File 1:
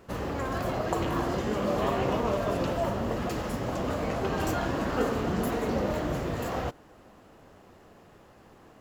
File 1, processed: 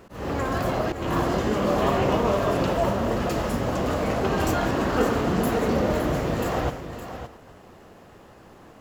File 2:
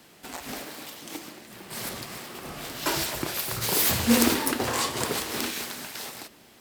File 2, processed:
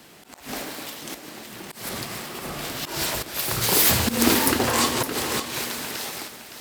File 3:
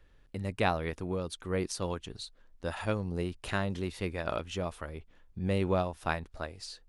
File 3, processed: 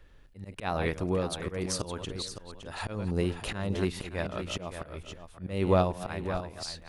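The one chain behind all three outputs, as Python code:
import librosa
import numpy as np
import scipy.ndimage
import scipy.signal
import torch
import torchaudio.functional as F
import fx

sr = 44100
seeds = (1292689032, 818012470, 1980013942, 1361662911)

y = fx.reverse_delay(x, sr, ms=148, wet_db=-13.5)
y = fx.auto_swell(y, sr, attack_ms=223.0)
y = y + 10.0 ** (-10.0 / 20.0) * np.pad(y, (int(564 * sr / 1000.0), 0))[:len(y)]
y = y * 10.0 ** (5.0 / 20.0)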